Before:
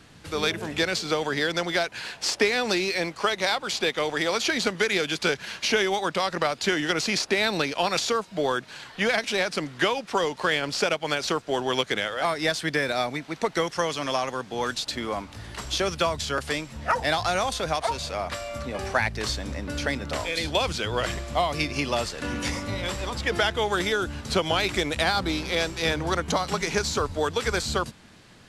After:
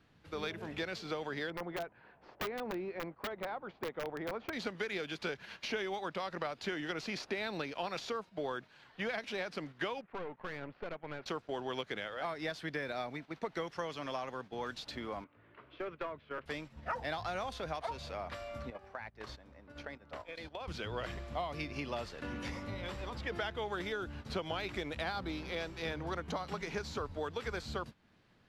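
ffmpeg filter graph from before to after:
-filter_complex "[0:a]asettb=1/sr,asplit=3[s0][s1][s2];[s0]atrim=end=1.504[s3];[s1]atrim=start=1.5:end=4.53,asetpts=PTS-STARTPTS,afade=t=in:d=0.004:c=qsin,afade=t=out:st=3.026:d=0.004:c=qsin,lowpass=1200,aeval=exprs='(mod(8.41*val(0)+1,2)-1)/8.41':c=same[s4];[s2]atrim=start=4.526[s5];[s3][s4]acrossfade=d=0.004:c1=hsin:c2=qsin[s6];[s6][s5]acrossfade=d=0.004:c1=qsin:c2=hsin,asettb=1/sr,asplit=3[s7][s8][s9];[s7]atrim=end=10.014[s10];[s8]atrim=start=10.01:end=11.26,asetpts=PTS-STARTPTS,afade=t=in:d=0.004:c=qsin,afade=t=out:st=1.246:d=0.004:c=qsin,lowpass=f=2300:w=0.5412,lowpass=f=2300:w=1.3066,aeval=exprs='(tanh(20*val(0)+0.65)-tanh(0.65))/20':c=same[s11];[s9]atrim=start=11.256[s12];[s10][s11]acrossfade=d=0.004:c1=hsin:c2=qsin[s13];[s13][s12]acrossfade=d=0.004:c1=qsin:c2=hsin,asettb=1/sr,asplit=3[s14][s15][s16];[s14]atrim=end=15.244[s17];[s15]atrim=start=15.24:end=16.46,asetpts=PTS-STARTPTS,afade=t=in:d=0.004:c=qsin,afade=t=out:st=1.216:d=0.004:c=qsin,highpass=190,equalizer=f=200:t=q:w=4:g=-10,equalizer=f=800:t=q:w=4:g=-10,equalizer=f=1800:t=q:w=4:g=-5,lowpass=f=2400:w=0.5412,lowpass=f=2400:w=1.3066,aeval=exprs='clip(val(0),-1,0.0501)':c=same[s18];[s16]atrim=start=16.456[s19];[s17][s18]acrossfade=d=0.004:c1=hsin:c2=qsin[s20];[s20][s19]acrossfade=d=0.004:c1=qsin:c2=hsin,asettb=1/sr,asplit=3[s21][s22][s23];[s21]atrim=end=18.704[s24];[s22]atrim=start=18.7:end=20.68,asetpts=PTS-STARTPTS,afade=t=in:d=0.004:c=qsin,afade=t=out:st=1.976:d=0.004:c=qsin,agate=range=0.251:threshold=0.0316:ratio=16:release=100:detection=peak,equalizer=f=930:w=0.49:g=7.5,acompressor=threshold=0.0251:ratio=4:attack=3.2:release=140:knee=1:detection=peak[s25];[s23]atrim=start=20.676[s26];[s24][s25]acrossfade=d=0.004:c1=hsin:c2=qsin[s27];[s27][s26]acrossfade=d=0.004:c1=qsin:c2=hsin,agate=range=0.355:threshold=0.0178:ratio=16:detection=peak,equalizer=f=8500:w=0.74:g=-14,acompressor=threshold=0.01:ratio=1.5,volume=0.501"

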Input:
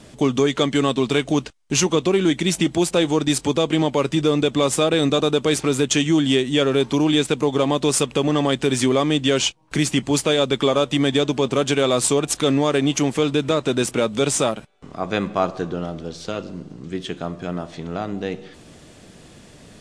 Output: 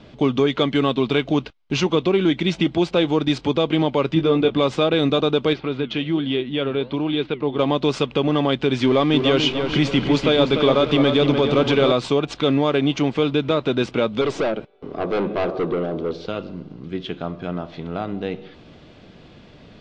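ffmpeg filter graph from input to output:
-filter_complex "[0:a]asettb=1/sr,asplit=3[s0][s1][s2];[s0]atrim=end=4.144[s3];[s1]atrim=start=4.14:end=4.58,asetpts=PTS-STARTPTS,afade=t=in:d=0.004:c=qsin,afade=t=out:st=0.436:d=0.004:c=qsin,aemphasis=mode=reproduction:type=50fm,asplit=2[s4][s5];[s5]adelay=18,volume=0.501[s6];[s4][s6]amix=inputs=2:normalize=0,atrim=end_sample=19404[s7];[s2]atrim=start=4.576[s8];[s3][s7]acrossfade=d=0.004:c1=hsin:c2=qsin[s9];[s9][s8]acrossfade=d=0.004:c1=qsin:c2=hsin,asettb=1/sr,asplit=3[s10][s11][s12];[s10]atrim=end=5.534[s13];[s11]atrim=start=5.53:end=7.59,asetpts=PTS-STARTPTS,afade=t=in:d=0.004:c=qsin,afade=t=out:st=2.056:d=0.004:c=qsin,lowpass=f=4300:w=0.5412,lowpass=f=4300:w=1.3066,flanger=delay=2.1:depth=7.5:regen=88:speed=1.2:shape=triangular[s14];[s12]atrim=start=7.586[s15];[s13][s14]acrossfade=d=0.004:c1=hsin:c2=qsin[s16];[s16][s15]acrossfade=d=0.004:c1=qsin:c2=hsin,asettb=1/sr,asplit=3[s17][s18][s19];[s17]atrim=end=8.844[s20];[s18]atrim=start=8.84:end=11.92,asetpts=PTS-STARTPTS,afade=t=in:d=0.004:c=qsin,afade=t=out:st=3.076:d=0.004:c=qsin,aeval=exprs='val(0)+0.5*0.0473*sgn(val(0))':c=same,asplit=2[s21][s22];[s22]adelay=296,lowpass=f=3300:p=1,volume=0.501,asplit=2[s23][s24];[s24]adelay=296,lowpass=f=3300:p=1,volume=0.49,asplit=2[s25][s26];[s26]adelay=296,lowpass=f=3300:p=1,volume=0.49,asplit=2[s27][s28];[s28]adelay=296,lowpass=f=3300:p=1,volume=0.49,asplit=2[s29][s30];[s30]adelay=296,lowpass=f=3300:p=1,volume=0.49,asplit=2[s31][s32];[s32]adelay=296,lowpass=f=3300:p=1,volume=0.49[s33];[s21][s23][s25][s27][s29][s31][s33]amix=inputs=7:normalize=0,atrim=end_sample=135828[s34];[s19]atrim=start=11.916[s35];[s20][s34]acrossfade=d=0.004:c1=hsin:c2=qsin[s36];[s36][s35]acrossfade=d=0.004:c1=qsin:c2=hsin,asettb=1/sr,asplit=3[s37][s38][s39];[s37]atrim=end=14.214[s40];[s38]atrim=start=14.21:end=16.26,asetpts=PTS-STARTPTS,afade=t=in:d=0.004:c=qsin,afade=t=out:st=2.046:d=0.004:c=qsin,equalizer=f=410:t=o:w=1.3:g=14,aeval=exprs='(tanh(7.94*val(0)+0.15)-tanh(0.15))/7.94':c=same[s41];[s39]atrim=start=16.256[s42];[s40][s41]acrossfade=d=0.004:c1=hsin:c2=qsin[s43];[s43][s42]acrossfade=d=0.004:c1=qsin:c2=hsin,lowpass=f=4200:w=0.5412,lowpass=f=4200:w=1.3066,bandreject=f=1800:w=12"

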